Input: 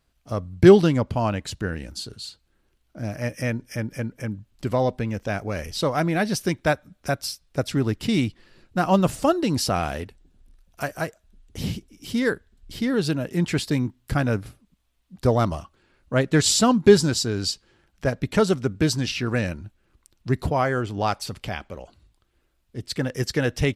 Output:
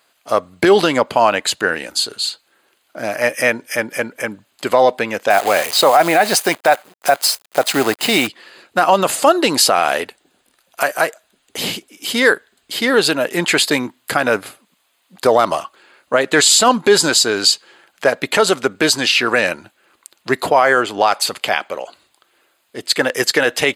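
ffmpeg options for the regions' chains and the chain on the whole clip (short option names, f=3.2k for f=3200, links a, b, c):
-filter_complex "[0:a]asettb=1/sr,asplit=3[a][b][c];[a]atrim=end=5.304[d];[b]atrim=start=5.3:end=8.27,asetpts=PTS-STARTPTS,afade=t=in:d=0.004:c=qsin,afade=t=out:st=2.966:d=0.004:c=qsin,equalizer=f=750:t=o:w=0.4:g=9,bandreject=f=3.4k:w=12,acrusher=bits=7:dc=4:mix=0:aa=0.000001[e];[c]atrim=start=8.266[f];[d][e]acrossfade=d=0.004:c1=hsin:c2=qsin[g];[g][f]acrossfade=d=0.004:c1=qsin:c2=hsin,highpass=560,bandreject=f=5.6k:w=5.2,alimiter=level_in=17.5dB:limit=-1dB:release=50:level=0:latency=1,volume=-1dB"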